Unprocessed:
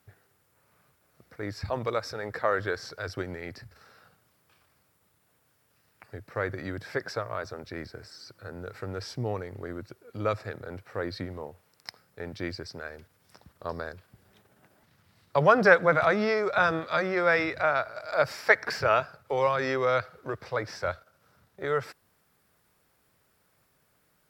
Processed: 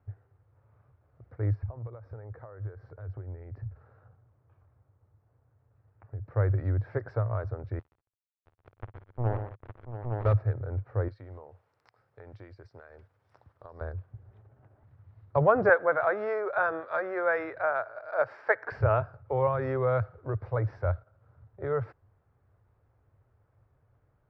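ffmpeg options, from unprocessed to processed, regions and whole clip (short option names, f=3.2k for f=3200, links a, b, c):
-filter_complex "[0:a]asettb=1/sr,asplit=3[a][b][c];[a]atrim=end=1.554[d];[b]atrim=start=1.55:end=6.27,asetpts=PTS-STARTPTS,afade=t=in:d=0.004:c=qsin,afade=t=out:st=4.716:d=0.004:c=qsin,acompressor=threshold=-42dB:ratio=6:attack=3.2:release=140:knee=1:detection=peak,lowpass=f=1.6k:p=1[e];[c]atrim=start=6.266[f];[d][e]acrossfade=d=0.004:c1=hsin:c2=qsin[g];[g][f]acrossfade=d=0.004:c1=qsin:c2=hsin,asettb=1/sr,asplit=3[h][i][j];[h]atrim=end=7.794[k];[i]atrim=start=7.79:end=10.33,asetpts=PTS-STARTPTS,afade=t=in:d=0.004:c=qsin,afade=t=out:st=2.536:d=0.004:c=qsin,acrusher=bits=3:mix=0:aa=0.5,aecho=1:1:52|121|184|684|863:0.266|0.376|0.119|0.299|0.668,atrim=end_sample=112014[l];[j]atrim=start=10.326[m];[k][l]acrossfade=d=0.004:c1=hsin:c2=qsin[n];[n][m]acrossfade=d=0.004:c1=qsin:c2=hsin,asettb=1/sr,asplit=3[o][p][q];[o]atrim=end=11.084[r];[p]atrim=start=11.08:end=13.81,asetpts=PTS-STARTPTS,afade=t=in:d=0.004:c=qsin,afade=t=out:st=2.726:d=0.004:c=qsin,aemphasis=mode=production:type=riaa,acompressor=threshold=-41dB:ratio=5:attack=3.2:release=140:knee=1:detection=peak[s];[q]atrim=start=13.806[t];[r][s]acrossfade=d=0.004:c1=hsin:c2=qsin[u];[u][t]acrossfade=d=0.004:c1=qsin:c2=hsin,asettb=1/sr,asplit=3[v][w][x];[v]atrim=end=15.694[y];[w]atrim=start=15.69:end=18.72,asetpts=PTS-STARTPTS,afade=t=in:d=0.004:c=qsin,afade=t=out:st=3.026:d=0.004:c=qsin,highpass=410,equalizer=f=1.6k:w=4.5:g=6[z];[x]atrim=start=18.716[aa];[y][z]acrossfade=d=0.004:c1=hsin:c2=qsin[ab];[ab][aa]acrossfade=d=0.004:c1=qsin:c2=hsin,lowpass=1k,lowshelf=f=140:t=q:w=3:g=8.5"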